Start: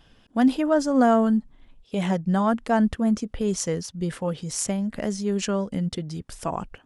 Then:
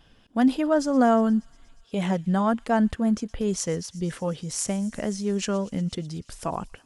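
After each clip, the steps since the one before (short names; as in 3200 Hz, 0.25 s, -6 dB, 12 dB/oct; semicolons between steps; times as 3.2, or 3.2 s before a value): thin delay 0.119 s, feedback 78%, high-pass 3300 Hz, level -18.5 dB; gain -1 dB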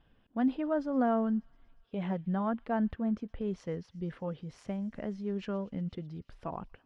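air absorption 360 m; gain -8 dB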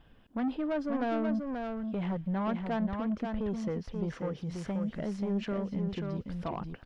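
in parallel at +1 dB: compressor, threshold -38 dBFS, peak gain reduction 13.5 dB; on the sum: soft clip -27 dBFS, distortion -12 dB; echo 0.534 s -5 dB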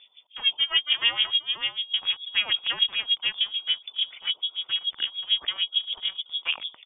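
Wiener smoothing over 25 samples; inverted band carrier 3500 Hz; LFO low-pass sine 6.8 Hz 930–2700 Hz; gain +8 dB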